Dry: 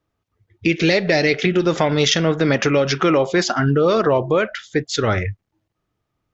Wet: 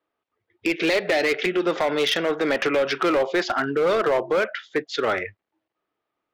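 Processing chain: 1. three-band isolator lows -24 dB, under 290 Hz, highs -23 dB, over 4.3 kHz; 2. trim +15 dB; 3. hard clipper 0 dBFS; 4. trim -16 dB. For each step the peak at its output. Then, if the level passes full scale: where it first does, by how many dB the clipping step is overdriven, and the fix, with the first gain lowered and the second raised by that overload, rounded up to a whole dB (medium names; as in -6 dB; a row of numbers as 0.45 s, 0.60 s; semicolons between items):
-5.5 dBFS, +9.5 dBFS, 0.0 dBFS, -16.0 dBFS; step 2, 9.5 dB; step 2 +5 dB, step 4 -6 dB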